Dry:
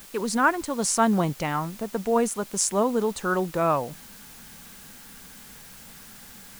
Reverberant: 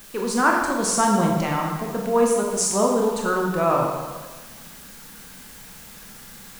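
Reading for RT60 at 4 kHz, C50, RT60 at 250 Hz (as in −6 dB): 1.1 s, 2.0 dB, 1.3 s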